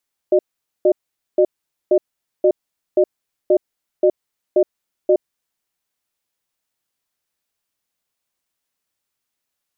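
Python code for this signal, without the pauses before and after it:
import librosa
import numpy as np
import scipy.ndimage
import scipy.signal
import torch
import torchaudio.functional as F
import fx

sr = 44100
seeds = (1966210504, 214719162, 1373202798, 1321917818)

y = fx.cadence(sr, length_s=4.9, low_hz=369.0, high_hz=606.0, on_s=0.07, off_s=0.46, level_db=-12.5)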